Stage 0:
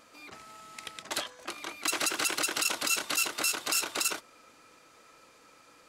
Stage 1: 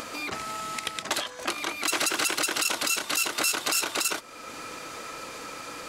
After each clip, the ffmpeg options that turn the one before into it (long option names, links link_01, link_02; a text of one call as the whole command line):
ffmpeg -i in.wav -filter_complex "[0:a]asplit=2[link_01][link_02];[link_02]acompressor=mode=upward:threshold=-34dB:ratio=2.5,volume=-0.5dB[link_03];[link_01][link_03]amix=inputs=2:normalize=0,alimiter=limit=-19.5dB:level=0:latency=1:release=247,volume=5.5dB" out.wav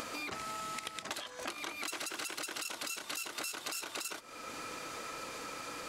ffmpeg -i in.wav -af "acompressor=threshold=-33dB:ratio=6,volume=-4dB" out.wav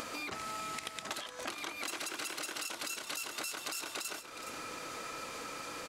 ffmpeg -i in.wav -af "aecho=1:1:418:0.316" out.wav